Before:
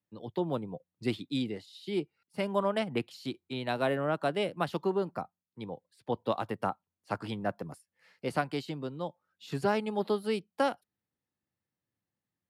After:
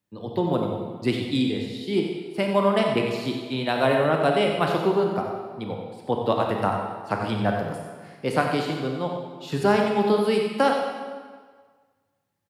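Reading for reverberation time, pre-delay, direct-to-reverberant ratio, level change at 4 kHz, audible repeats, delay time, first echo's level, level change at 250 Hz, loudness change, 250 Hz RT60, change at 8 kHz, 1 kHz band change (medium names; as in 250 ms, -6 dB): 1.6 s, 27 ms, 1.0 dB, +9.5 dB, 1, 92 ms, -9.0 dB, +9.5 dB, +9.0 dB, 1.5 s, no reading, +9.5 dB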